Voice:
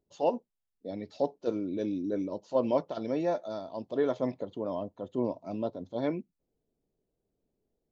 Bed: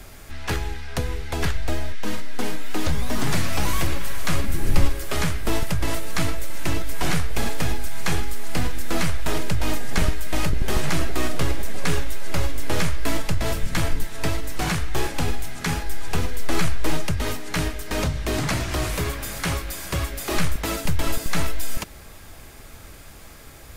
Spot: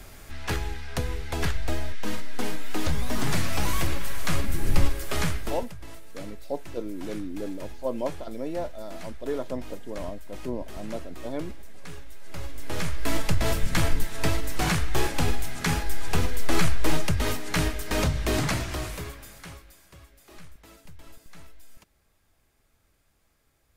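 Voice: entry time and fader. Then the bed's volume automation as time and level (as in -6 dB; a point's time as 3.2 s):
5.30 s, -2.5 dB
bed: 5.36 s -3 dB
5.73 s -18.5 dB
12 s -18.5 dB
13.25 s -0.5 dB
18.38 s -0.5 dB
19.96 s -25 dB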